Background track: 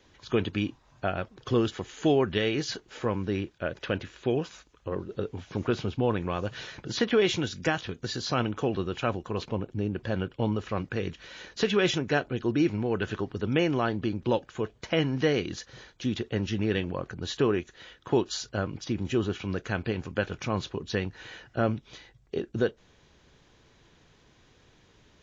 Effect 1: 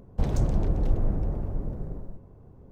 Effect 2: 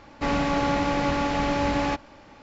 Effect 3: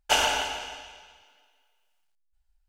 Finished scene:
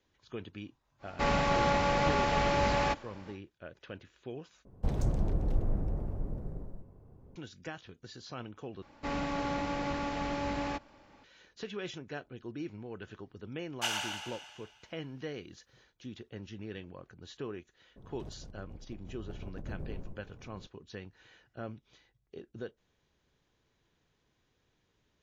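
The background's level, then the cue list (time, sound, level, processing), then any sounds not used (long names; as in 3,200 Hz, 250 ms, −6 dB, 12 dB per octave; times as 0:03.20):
background track −15.5 dB
0:00.98: mix in 2 −2.5 dB, fades 0.10 s + notch filter 290 Hz, Q 6.2
0:04.65: overwrite with 1 −5.5 dB
0:08.82: overwrite with 2 −10 dB
0:13.72: mix in 3 −9.5 dB + high-pass filter 960 Hz
0:17.96: mix in 1 −10.5 dB + compressor whose output falls as the input rises −34 dBFS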